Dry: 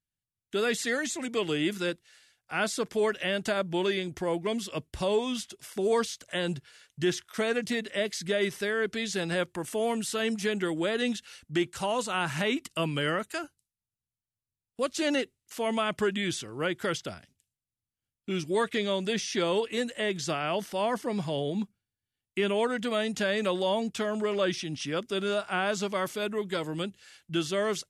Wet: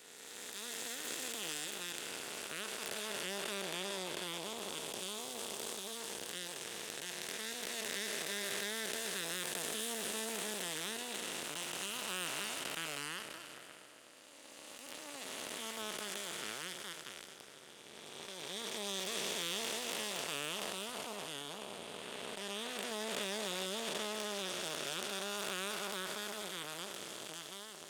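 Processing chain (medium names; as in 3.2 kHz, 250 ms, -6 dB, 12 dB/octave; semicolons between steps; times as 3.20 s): spectral blur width 1400 ms; Chebyshev shaper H 7 -20 dB, 8 -22 dB, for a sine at -22.5 dBFS; RIAA curve recording; trim -3.5 dB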